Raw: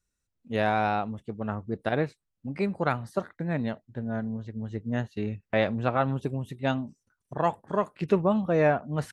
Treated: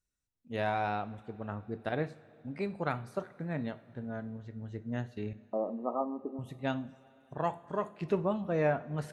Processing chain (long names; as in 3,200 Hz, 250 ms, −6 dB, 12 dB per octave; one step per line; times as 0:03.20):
0:05.33–0:06.39: linear-phase brick-wall band-pass 190–1,300 Hz
coupled-rooms reverb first 0.4 s, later 4 s, from −18 dB, DRR 11 dB
level −7 dB